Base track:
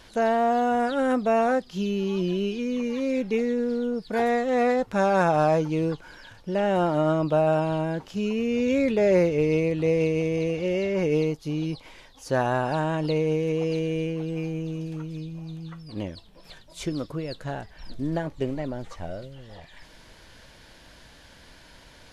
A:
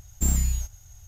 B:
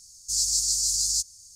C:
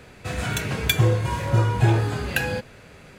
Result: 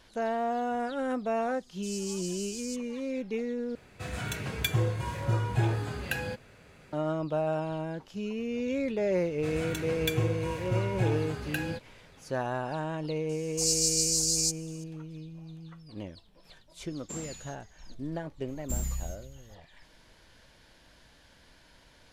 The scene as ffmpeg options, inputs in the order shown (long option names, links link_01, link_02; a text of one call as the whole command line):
ffmpeg -i bed.wav -i cue0.wav -i cue1.wav -i cue2.wav -filter_complex "[2:a]asplit=2[link_01][link_02];[3:a]asplit=2[link_03][link_04];[1:a]asplit=2[link_05][link_06];[0:a]volume=-8dB[link_07];[link_05]highpass=280,lowpass=5700[link_08];[link_06]asplit=2[link_09][link_10];[link_10]adelay=303.2,volume=-16dB,highshelf=frequency=4000:gain=-6.82[link_11];[link_09][link_11]amix=inputs=2:normalize=0[link_12];[link_07]asplit=2[link_13][link_14];[link_13]atrim=end=3.754[link_15];[link_03]atrim=end=3.18,asetpts=PTS-STARTPTS,volume=-8.5dB[link_16];[link_14]atrim=start=6.926[link_17];[link_01]atrim=end=1.55,asetpts=PTS-STARTPTS,volume=-17dB,afade=type=in:duration=0.004:curve=hsin,afade=type=out:start_time=1.546:duration=0.004:curve=hsin,adelay=1540[link_18];[link_04]atrim=end=3.18,asetpts=PTS-STARTPTS,volume=-10.5dB,afade=type=in:duration=0.004:curve=hsin,afade=type=out:start_time=3.176:duration=0.004:curve=hsin,adelay=9180[link_19];[link_02]atrim=end=1.55,asetpts=PTS-STARTPTS,volume=-2.5dB,afade=type=in:duration=0.004:curve=hsin,afade=type=out:start_time=1.546:duration=0.004:curve=hsin,adelay=13290[link_20];[link_08]atrim=end=1.07,asetpts=PTS-STARTPTS,volume=-6.5dB,afade=type=in:duration=0.004:curve=hsin,afade=type=out:start_time=1.066:duration=0.004:curve=hsin,adelay=16880[link_21];[link_12]atrim=end=1.07,asetpts=PTS-STARTPTS,volume=-9.5dB,afade=type=in:duration=0.004:curve=hsin,afade=type=out:start_time=1.066:duration=0.004:curve=hsin,adelay=18480[link_22];[link_15][link_16]acrossfade=duration=0.004:curve1=hsin:curve2=hsin[link_23];[link_23][link_17]acrossfade=duration=0.004:curve1=hsin:curve2=hsin[link_24];[link_24][link_18][link_19][link_20][link_21][link_22]amix=inputs=6:normalize=0" out.wav